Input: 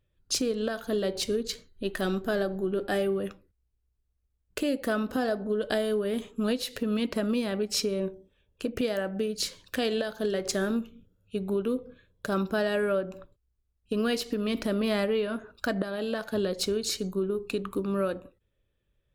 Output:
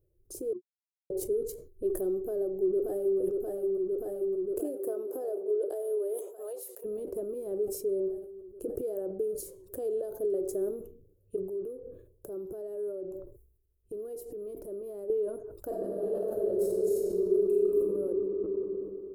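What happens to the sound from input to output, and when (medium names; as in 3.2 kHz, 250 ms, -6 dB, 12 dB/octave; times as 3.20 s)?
0.53–1.10 s: mute
2.18–3.19 s: echo throw 580 ms, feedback 75%, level -7 dB
4.59–6.84 s: high-pass 220 Hz -> 740 Hz 24 dB/octave
11.36–15.10 s: compression, threshold -39 dBFS
15.65–17.87 s: reverb throw, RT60 2.7 s, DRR -7.5 dB
whole clip: compression 3:1, threshold -36 dBFS; FFT filter 140 Hz 0 dB, 230 Hz -15 dB, 360 Hz +12 dB, 1.9 kHz -29 dB, 3.9 kHz -30 dB, 11 kHz +5 dB; decay stretcher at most 80 dB/s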